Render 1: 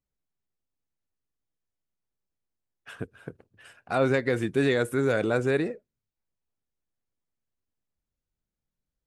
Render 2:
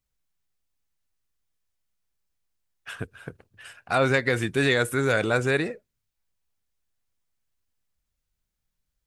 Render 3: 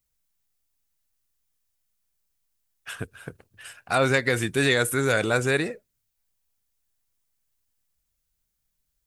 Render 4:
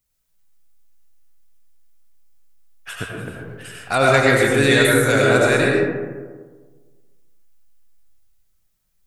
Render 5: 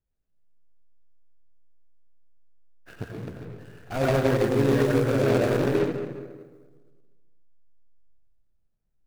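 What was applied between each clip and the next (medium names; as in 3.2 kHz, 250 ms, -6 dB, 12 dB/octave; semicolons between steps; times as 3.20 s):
peaking EQ 310 Hz -9 dB 2.9 oct; trim +8 dB
treble shelf 6.3 kHz +10 dB
reverberation RT60 1.5 s, pre-delay 55 ms, DRR -3 dB; trim +3 dB
median filter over 41 samples; trim -3.5 dB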